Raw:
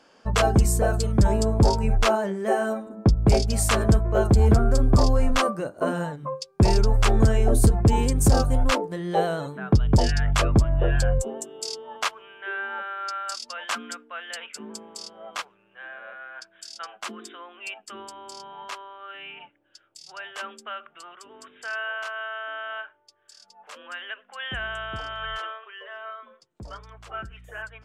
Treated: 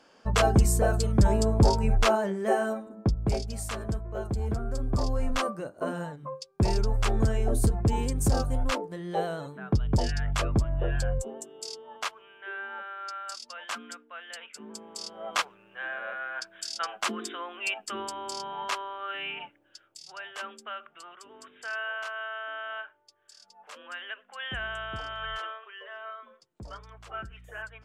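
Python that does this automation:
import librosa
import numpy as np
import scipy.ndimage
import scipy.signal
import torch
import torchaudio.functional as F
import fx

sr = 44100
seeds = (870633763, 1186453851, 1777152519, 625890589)

y = fx.gain(x, sr, db=fx.line((2.53, -2.0), (3.72, -13.0), (4.56, -13.0), (5.34, -6.5), (14.57, -6.5), (15.37, 5.0), (19.32, 5.0), (20.21, -3.0)))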